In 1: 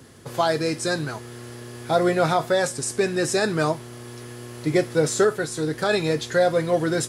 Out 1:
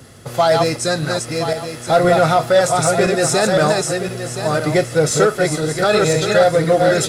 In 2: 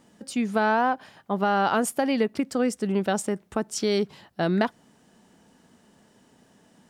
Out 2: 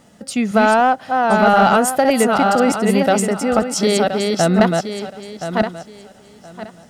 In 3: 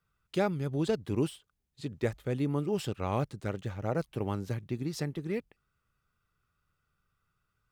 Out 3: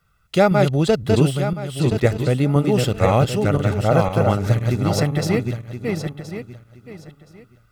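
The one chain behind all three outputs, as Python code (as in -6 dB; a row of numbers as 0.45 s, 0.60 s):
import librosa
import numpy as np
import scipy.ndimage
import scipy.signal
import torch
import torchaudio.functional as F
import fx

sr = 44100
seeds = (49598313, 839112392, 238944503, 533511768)

p1 = fx.reverse_delay_fb(x, sr, ms=511, feedback_pct=44, wet_db=-3)
p2 = p1 + 0.38 * np.pad(p1, (int(1.5 * sr / 1000.0), 0))[:len(p1)]
p3 = np.clip(p2, -10.0 ** (-16.5 / 20.0), 10.0 ** (-16.5 / 20.0))
p4 = p2 + (p3 * librosa.db_to_amplitude(-4.5))
y = librosa.util.normalize(p4) * 10.0 ** (-2 / 20.0)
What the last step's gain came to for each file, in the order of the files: +1.5 dB, +4.5 dB, +9.0 dB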